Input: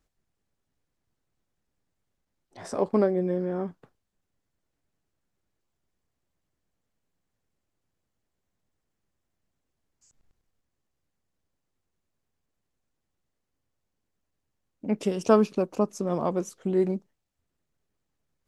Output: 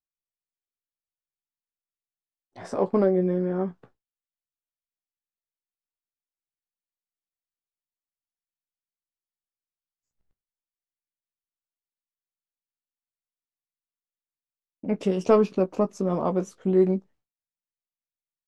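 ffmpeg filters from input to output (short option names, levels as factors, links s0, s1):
-filter_complex "[0:a]acontrast=49,aemphasis=mode=reproduction:type=50kf,agate=range=0.0224:threshold=0.00355:ratio=3:detection=peak,asplit=2[s0][s1];[s1]adelay=16,volume=0.376[s2];[s0][s2]amix=inputs=2:normalize=0,volume=0.631"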